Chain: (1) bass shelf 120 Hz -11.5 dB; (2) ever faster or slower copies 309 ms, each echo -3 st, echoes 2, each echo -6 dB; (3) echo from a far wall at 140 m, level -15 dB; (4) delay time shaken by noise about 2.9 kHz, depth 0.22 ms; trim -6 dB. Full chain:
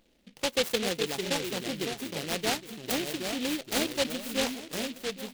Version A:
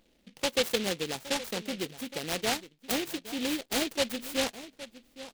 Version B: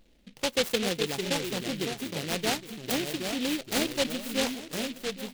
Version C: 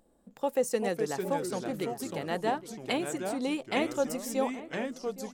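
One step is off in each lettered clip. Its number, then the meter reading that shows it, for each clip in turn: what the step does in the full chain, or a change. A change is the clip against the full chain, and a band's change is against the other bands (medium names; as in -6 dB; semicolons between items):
2, momentary loudness spread change +4 LU; 1, 125 Hz band +2.5 dB; 4, 4 kHz band -10.5 dB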